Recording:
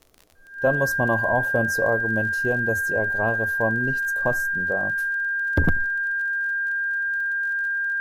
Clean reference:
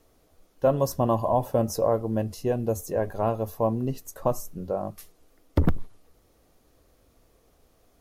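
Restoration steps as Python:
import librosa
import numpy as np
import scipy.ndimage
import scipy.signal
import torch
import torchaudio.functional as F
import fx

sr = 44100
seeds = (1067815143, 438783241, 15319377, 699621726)

y = fx.fix_declick_ar(x, sr, threshold=6.5)
y = fx.notch(y, sr, hz=1600.0, q=30.0)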